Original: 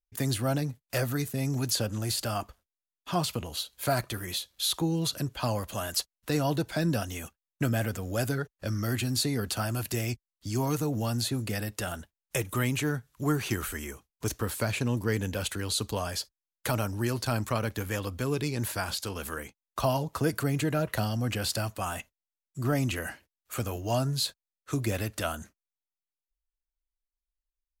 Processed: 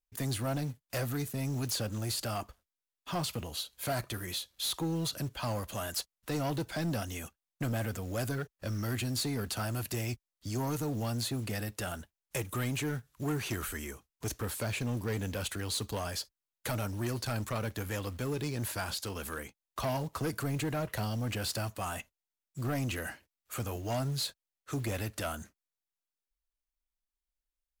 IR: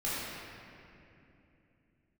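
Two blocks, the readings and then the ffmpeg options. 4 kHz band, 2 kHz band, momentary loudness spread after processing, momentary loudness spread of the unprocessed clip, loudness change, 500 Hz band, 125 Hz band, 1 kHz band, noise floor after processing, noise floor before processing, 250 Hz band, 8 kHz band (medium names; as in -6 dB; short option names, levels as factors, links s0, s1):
-4.5 dB, -4.5 dB, 7 LU, 8 LU, -4.5 dB, -5.0 dB, -4.5 dB, -4.5 dB, under -85 dBFS, under -85 dBFS, -5.0 dB, -4.0 dB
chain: -af "acrusher=bits=5:mode=log:mix=0:aa=0.000001,asoftclip=type=tanh:threshold=0.0531,volume=0.794"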